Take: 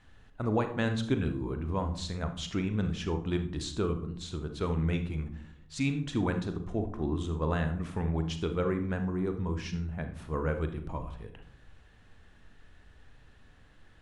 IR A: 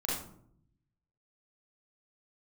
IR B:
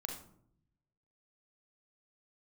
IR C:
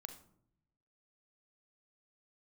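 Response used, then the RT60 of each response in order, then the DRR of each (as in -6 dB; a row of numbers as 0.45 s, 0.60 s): C; 0.65 s, 0.65 s, 0.70 s; -6.5 dB, 2.0 dB, 7.0 dB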